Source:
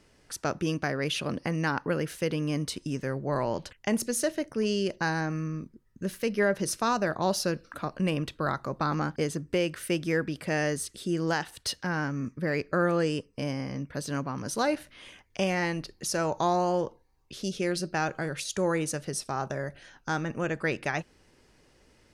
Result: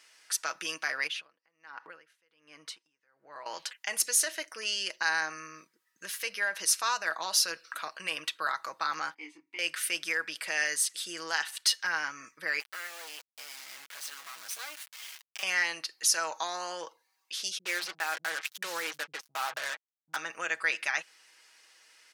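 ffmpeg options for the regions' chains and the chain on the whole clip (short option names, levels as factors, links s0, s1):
-filter_complex "[0:a]asettb=1/sr,asplit=3[s0][s1][s2];[s0]atrim=end=1.074[s3];[s1]atrim=start=1.07:end=3.46,asetpts=PTS-STARTPTS,afade=t=in:d=0.004:c=qsin,afade=t=out:st=2.386:d=0.004:c=qsin,lowpass=f=1500:p=1,acompressor=threshold=0.0178:ratio=4:attack=3.2:release=140:knee=1:detection=peak,aeval=exprs='val(0)*pow(10,-28*(0.5-0.5*cos(2*PI*1.3*n/s))/20)':c=same[s4];[s2]atrim=start=3.456[s5];[s3][s4]acrossfade=d=0.004:c1=hsin:c2=qsin[s6];[s6][s5]acrossfade=d=0.004:c1=qsin:c2=hsin,asettb=1/sr,asplit=3[s7][s8][s9];[s7]atrim=end=9.144[s10];[s8]atrim=start=9.14:end=9.59,asetpts=PTS-STARTPTS,afade=t=in:d=0.004:c=qsin,afade=t=out:st=0.446:d=0.004:c=qsin,asplit=3[s11][s12][s13];[s11]bandpass=f=300:t=q:w=8,volume=1[s14];[s12]bandpass=f=870:t=q:w=8,volume=0.501[s15];[s13]bandpass=f=2240:t=q:w=8,volume=0.355[s16];[s14][s15][s16]amix=inputs=3:normalize=0,equalizer=f=1800:w=4.1:g=5.5,asplit=2[s17][s18];[s18]adelay=23,volume=0.562[s19];[s17][s19]amix=inputs=2:normalize=0,atrim=end_sample=19845[s20];[s9]atrim=start=9.586[s21];[s10][s20]acrossfade=d=0.004:c1=hsin:c2=qsin[s22];[s22][s21]acrossfade=d=0.004:c1=qsin:c2=hsin,asettb=1/sr,asplit=3[s23][s24][s25];[s23]atrim=end=12.604[s26];[s24]atrim=start=12.6:end=15.43,asetpts=PTS-STARTPTS,afade=t=in:d=0.004:c=qsin,afade=t=out:st=2.826:d=0.004:c=qsin,acompressor=threshold=0.0141:ratio=3:attack=3.2:release=140:knee=1:detection=peak,acrusher=bits=5:dc=4:mix=0:aa=0.000001[s27];[s25]atrim=start=15.426[s28];[s26][s27]acrossfade=d=0.004:c1=hsin:c2=qsin[s29];[s29][s28]acrossfade=d=0.004:c1=qsin:c2=hsin,asettb=1/sr,asplit=3[s30][s31][s32];[s30]atrim=end=17.584[s33];[s31]atrim=start=17.58:end=20.16,asetpts=PTS-STARTPTS,afade=t=in:d=0.004:c=qsin,afade=t=out:st=2.576:d=0.004:c=qsin,lowpass=2600,acrusher=bits=5:mix=0:aa=0.5,acrossover=split=180[s34][s35];[s35]adelay=60[s36];[s34][s36]amix=inputs=2:normalize=0,atrim=end_sample=113778[s37];[s32]atrim=start=20.156[s38];[s33][s37]acrossfade=d=0.004:c1=hsin:c2=qsin[s39];[s39][s38]acrossfade=d=0.004:c1=qsin:c2=hsin,alimiter=limit=0.0944:level=0:latency=1:release=55,highpass=1500,aecho=1:1:6.2:0.44,volume=2.24"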